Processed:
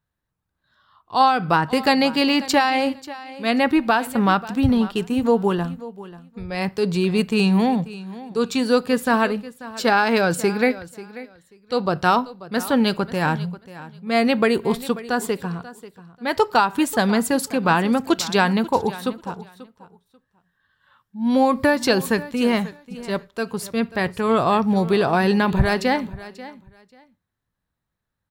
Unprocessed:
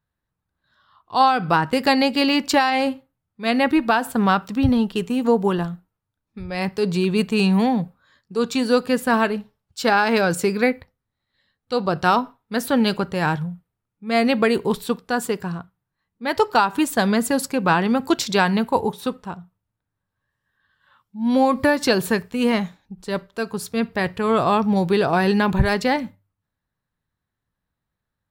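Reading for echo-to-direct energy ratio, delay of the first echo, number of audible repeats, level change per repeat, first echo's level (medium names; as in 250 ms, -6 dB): -17.0 dB, 538 ms, 2, -14.5 dB, -17.0 dB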